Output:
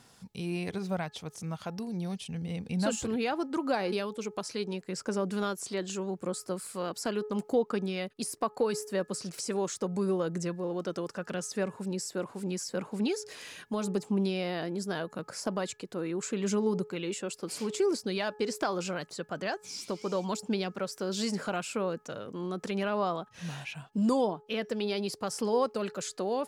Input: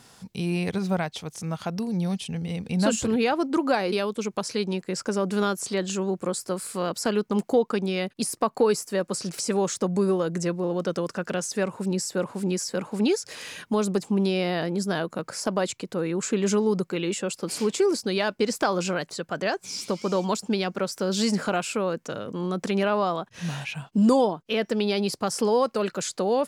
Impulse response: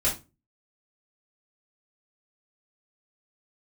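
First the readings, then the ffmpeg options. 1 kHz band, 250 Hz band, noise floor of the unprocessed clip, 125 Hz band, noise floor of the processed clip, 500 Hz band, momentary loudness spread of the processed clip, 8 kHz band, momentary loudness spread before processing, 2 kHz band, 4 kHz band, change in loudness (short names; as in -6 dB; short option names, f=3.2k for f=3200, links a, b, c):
-6.5 dB, -7.0 dB, -59 dBFS, -7.0 dB, -59 dBFS, -6.5 dB, 8 LU, -7.0 dB, 7 LU, -7.0 dB, -7.0 dB, -7.0 dB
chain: -af "bandreject=f=424:t=h:w=4,bandreject=f=848:t=h:w=4,bandreject=f=1.272k:t=h:w=4,bandreject=f=1.696k:t=h:w=4,aphaser=in_gain=1:out_gain=1:delay=3:decay=0.21:speed=0.78:type=sinusoidal,volume=-7dB"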